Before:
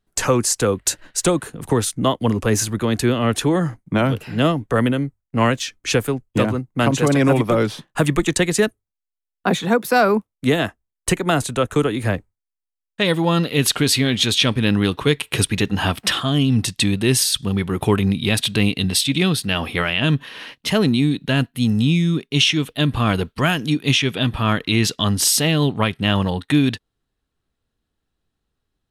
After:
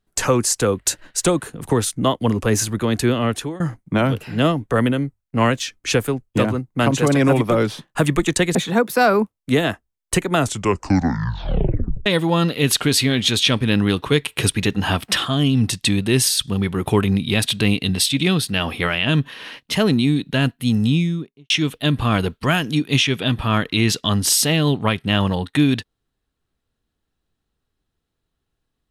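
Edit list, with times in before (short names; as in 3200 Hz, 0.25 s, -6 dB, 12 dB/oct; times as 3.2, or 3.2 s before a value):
3.2–3.6 fade out, to -21.5 dB
8.55–9.5 cut
11.29 tape stop 1.72 s
21.8–22.45 studio fade out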